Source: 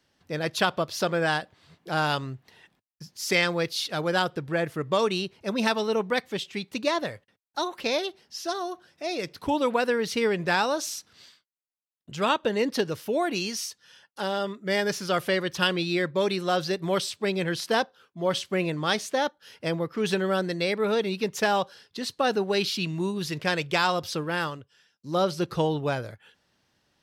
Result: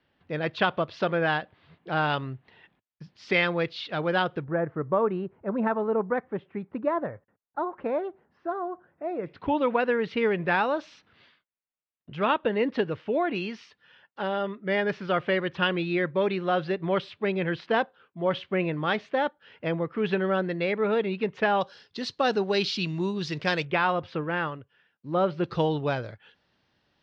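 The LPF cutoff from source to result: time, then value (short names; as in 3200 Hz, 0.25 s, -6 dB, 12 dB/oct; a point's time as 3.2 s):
LPF 24 dB/oct
3300 Hz
from 4.44 s 1500 Hz
from 9.26 s 2900 Hz
from 21.61 s 5300 Hz
from 23.65 s 2700 Hz
from 25.44 s 4600 Hz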